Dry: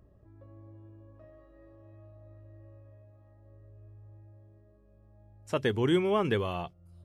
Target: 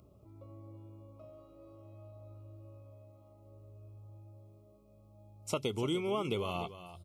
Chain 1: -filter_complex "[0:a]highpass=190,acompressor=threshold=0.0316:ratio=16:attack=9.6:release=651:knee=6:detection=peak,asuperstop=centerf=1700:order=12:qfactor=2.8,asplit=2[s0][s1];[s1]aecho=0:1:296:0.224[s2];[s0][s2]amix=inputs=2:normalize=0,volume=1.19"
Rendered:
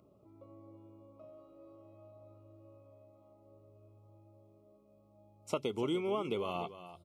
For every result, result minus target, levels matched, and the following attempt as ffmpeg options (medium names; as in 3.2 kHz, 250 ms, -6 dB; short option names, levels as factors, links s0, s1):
8 kHz band -7.0 dB; 125 Hz band -6.0 dB
-filter_complex "[0:a]highpass=190,acompressor=threshold=0.0316:ratio=16:attack=9.6:release=651:knee=6:detection=peak,asuperstop=centerf=1700:order=12:qfactor=2.8,highshelf=f=3300:g=9,asplit=2[s0][s1];[s1]aecho=0:1:296:0.224[s2];[s0][s2]amix=inputs=2:normalize=0,volume=1.19"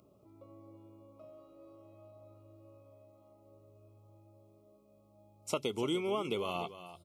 125 Hz band -6.0 dB
-filter_complex "[0:a]highpass=80,acompressor=threshold=0.0316:ratio=16:attack=9.6:release=651:knee=6:detection=peak,asuperstop=centerf=1700:order=12:qfactor=2.8,highshelf=f=3300:g=9,asplit=2[s0][s1];[s1]aecho=0:1:296:0.224[s2];[s0][s2]amix=inputs=2:normalize=0,volume=1.19"